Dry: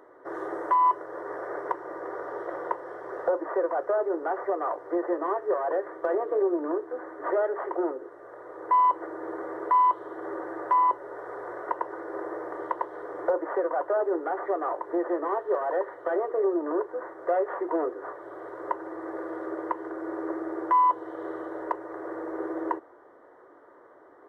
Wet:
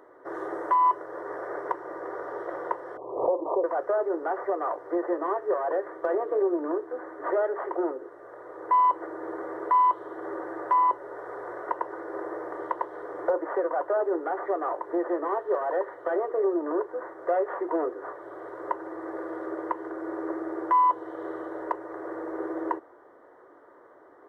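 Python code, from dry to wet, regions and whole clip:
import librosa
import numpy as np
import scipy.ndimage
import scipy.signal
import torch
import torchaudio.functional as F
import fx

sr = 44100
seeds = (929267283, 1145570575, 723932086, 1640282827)

y = fx.chain(x, sr, fx.steep_lowpass(hz=1100.0, slope=96),
    fx.pre_swell(db_per_s=83.0), at=(2.97, 3.64))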